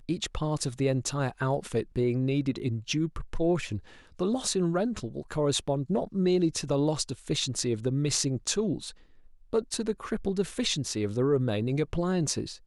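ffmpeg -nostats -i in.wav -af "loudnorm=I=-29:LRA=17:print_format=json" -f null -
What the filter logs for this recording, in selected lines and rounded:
"input_i" : "-29.1",
"input_tp" : "-11.0",
"input_lra" : "1.8",
"input_thresh" : "-39.3",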